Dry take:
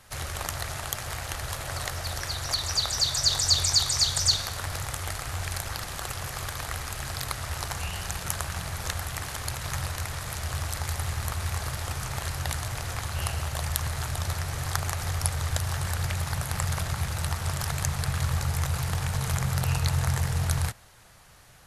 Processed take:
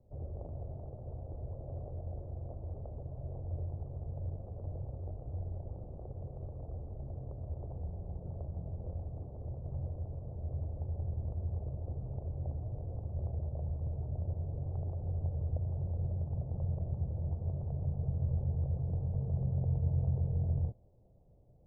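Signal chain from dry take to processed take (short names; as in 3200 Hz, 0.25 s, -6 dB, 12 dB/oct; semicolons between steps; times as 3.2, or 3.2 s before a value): steep low-pass 610 Hz 36 dB/oct; gain -5 dB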